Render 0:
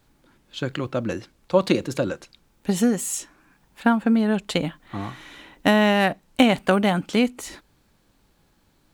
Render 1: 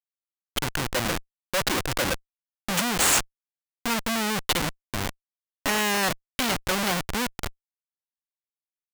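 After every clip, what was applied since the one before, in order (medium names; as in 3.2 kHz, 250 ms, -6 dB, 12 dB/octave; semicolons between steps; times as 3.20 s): whistle 2.8 kHz -49 dBFS; Schmitt trigger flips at -27 dBFS; tilt shelf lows -6.5 dB, about 650 Hz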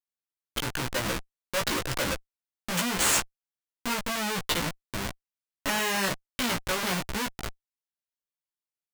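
band-stop 760 Hz, Q 12; chorus 0.97 Hz, delay 15 ms, depth 2.8 ms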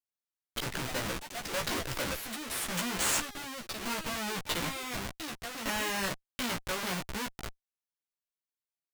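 ever faster or slower copies 126 ms, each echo +4 st, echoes 3, each echo -6 dB; trim -5.5 dB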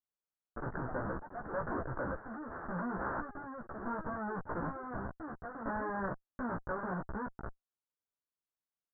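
steep low-pass 1.6 kHz 72 dB/octave; trim -1 dB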